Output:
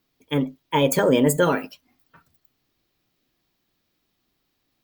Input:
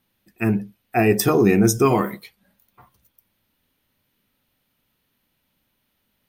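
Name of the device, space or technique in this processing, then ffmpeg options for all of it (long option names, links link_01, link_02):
nightcore: -af "asetrate=57330,aresample=44100,volume=-2dB"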